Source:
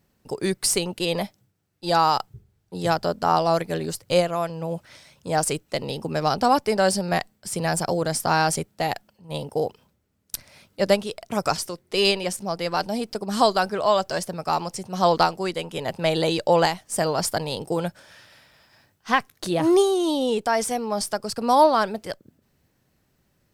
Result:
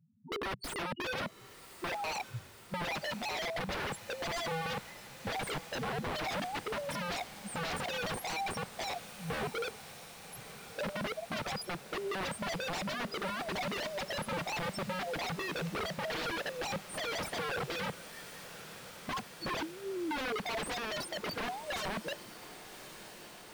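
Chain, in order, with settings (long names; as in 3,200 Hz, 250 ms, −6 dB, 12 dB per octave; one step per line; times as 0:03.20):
high-pass filter 84 Hz 24 dB per octave
spectral peaks only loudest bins 2
compressor whose output falls as the input rises −29 dBFS, ratio −0.5
wrap-around overflow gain 32 dB
on a send: feedback delay with all-pass diffusion 1,110 ms, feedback 75%, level −16 dB
on the sum: slew-rate limiting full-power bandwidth 47 Hz
level +1.5 dB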